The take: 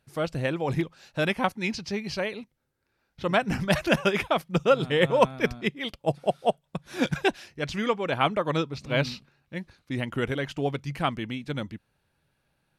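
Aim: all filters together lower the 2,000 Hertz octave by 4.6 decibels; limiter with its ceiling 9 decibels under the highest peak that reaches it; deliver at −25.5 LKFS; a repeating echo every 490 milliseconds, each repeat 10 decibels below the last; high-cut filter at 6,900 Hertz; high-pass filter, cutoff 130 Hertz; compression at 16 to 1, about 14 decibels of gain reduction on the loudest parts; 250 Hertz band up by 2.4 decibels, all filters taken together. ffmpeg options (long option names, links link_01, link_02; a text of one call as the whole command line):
ffmpeg -i in.wav -af "highpass=130,lowpass=6900,equalizer=frequency=250:width_type=o:gain=4,equalizer=frequency=2000:width_type=o:gain=-6,acompressor=threshold=-29dB:ratio=16,alimiter=level_in=2.5dB:limit=-24dB:level=0:latency=1,volume=-2.5dB,aecho=1:1:490|980|1470|1960:0.316|0.101|0.0324|0.0104,volume=12.5dB" out.wav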